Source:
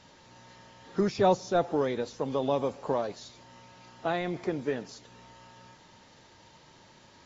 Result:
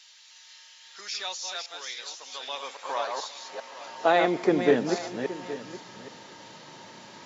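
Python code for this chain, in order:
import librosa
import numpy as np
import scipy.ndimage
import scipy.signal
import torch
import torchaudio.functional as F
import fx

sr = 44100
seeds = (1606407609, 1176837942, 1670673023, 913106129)

y = fx.reverse_delay(x, sr, ms=277, wet_db=-5.5)
y = fx.filter_sweep_highpass(y, sr, from_hz=3000.0, to_hz=180.0, start_s=2.18, end_s=4.8, q=0.85)
y = y + 10.0 ** (-15.0 / 20.0) * np.pad(y, (int(821 * sr / 1000.0), 0))[:len(y)]
y = y * 10.0 ** (8.5 / 20.0)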